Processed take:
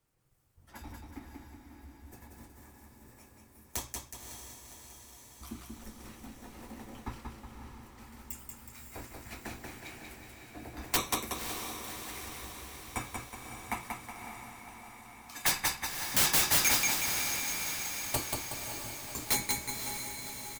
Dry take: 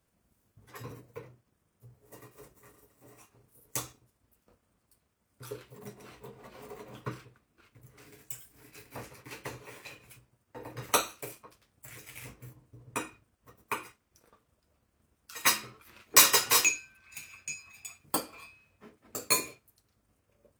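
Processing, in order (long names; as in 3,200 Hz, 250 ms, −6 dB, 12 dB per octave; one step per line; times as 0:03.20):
repeating echo 185 ms, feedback 47%, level −4 dB
wrap-around overflow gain 16.5 dB
on a send: feedback delay with all-pass diffusion 553 ms, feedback 65%, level −7 dB
on the sum: frequency shifter −190 Hz
level −2 dB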